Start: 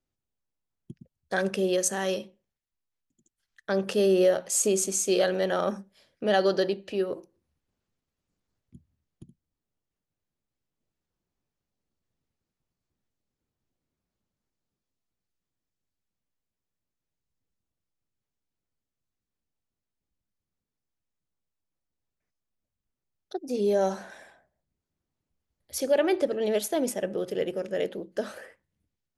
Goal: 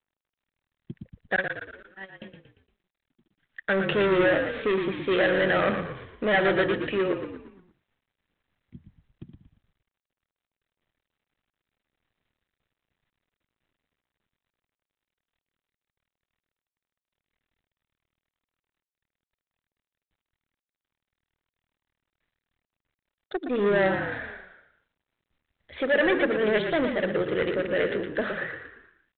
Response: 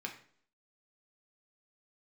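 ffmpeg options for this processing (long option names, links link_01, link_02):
-filter_complex "[0:a]asoftclip=type=tanh:threshold=-25.5dB,equalizer=frequency=1900:width=1.9:gain=11.5,asettb=1/sr,asplit=3[link_01][link_02][link_03];[link_01]atrim=end=1.364[link_04];[link_02]atrim=start=1.36:end=2.22,asetpts=PTS-STARTPTS,afade=type=in:duration=0.004:curve=qsin,afade=type=out:start_time=0.856:duration=0.004:curve=qsin,agate=range=-41dB:threshold=-24dB:ratio=16:detection=peak[link_05];[link_03]atrim=start=2.216[link_06];[link_04][link_05]acrossfade=duration=0.004:curve1=hsin:curve2=qsin[link_07];[link_07][link_06]acrossfade=duration=0.004:curve1=qsin:curve2=hsin,asplit=2[link_08][link_09];[link_09]asplit=5[link_10][link_11][link_12][link_13][link_14];[link_10]adelay=116,afreqshift=-39,volume=-7dB[link_15];[link_11]adelay=232,afreqshift=-78,volume=-13.7dB[link_16];[link_12]adelay=348,afreqshift=-117,volume=-20.5dB[link_17];[link_13]adelay=464,afreqshift=-156,volume=-27.2dB[link_18];[link_14]adelay=580,afreqshift=-195,volume=-34dB[link_19];[link_15][link_16][link_17][link_18][link_19]amix=inputs=5:normalize=0[link_20];[link_08][link_20]amix=inputs=2:normalize=0,volume=5dB" -ar 8000 -c:a adpcm_g726 -b:a 32k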